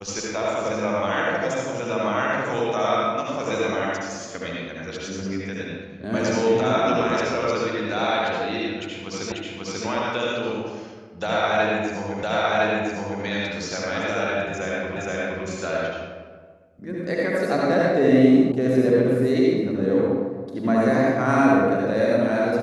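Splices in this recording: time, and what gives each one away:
9.32 repeat of the last 0.54 s
12.23 repeat of the last 1.01 s
14.96 repeat of the last 0.47 s
18.52 sound cut off

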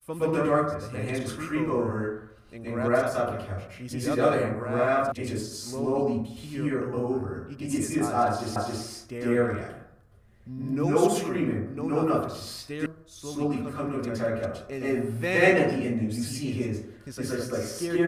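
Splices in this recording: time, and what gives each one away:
5.12 sound cut off
8.56 repeat of the last 0.27 s
12.86 sound cut off

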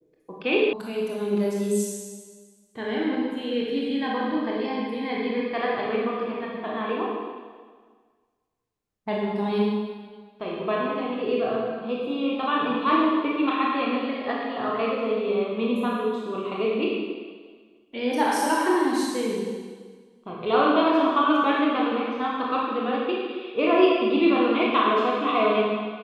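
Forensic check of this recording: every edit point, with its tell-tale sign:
0.73 sound cut off

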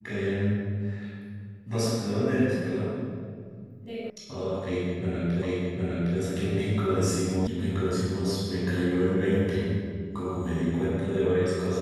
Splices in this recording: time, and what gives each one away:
4.1 sound cut off
5.42 repeat of the last 0.76 s
7.47 sound cut off

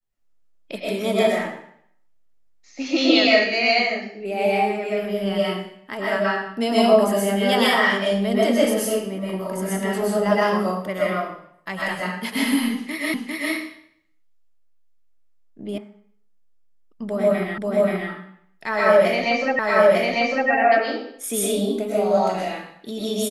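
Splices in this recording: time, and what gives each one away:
13.14 repeat of the last 0.4 s
15.78 sound cut off
17.58 repeat of the last 0.53 s
19.59 repeat of the last 0.9 s

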